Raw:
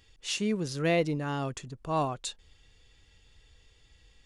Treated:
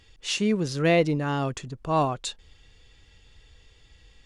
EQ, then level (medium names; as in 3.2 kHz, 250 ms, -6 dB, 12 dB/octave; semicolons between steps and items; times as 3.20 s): treble shelf 9.6 kHz -9 dB; +5.5 dB